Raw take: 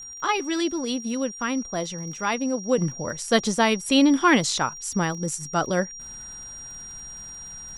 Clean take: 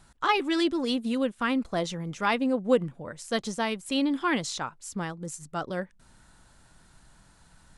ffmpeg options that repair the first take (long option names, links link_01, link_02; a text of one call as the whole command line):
ffmpeg -i in.wav -af "adeclick=threshold=4,bandreject=frequency=5700:width=30,asetnsamples=nb_out_samples=441:pad=0,asendcmd='2.78 volume volume -8.5dB',volume=0dB" out.wav